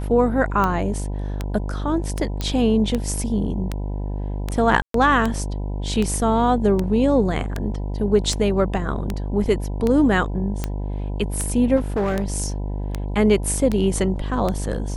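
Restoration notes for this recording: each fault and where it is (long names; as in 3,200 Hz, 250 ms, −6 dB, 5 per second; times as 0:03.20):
mains buzz 50 Hz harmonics 20 −26 dBFS
scratch tick 78 rpm −10 dBFS
0:02.41: click −11 dBFS
0:04.82–0:04.94: drop-out 123 ms
0:11.76–0:12.24: clipping −18 dBFS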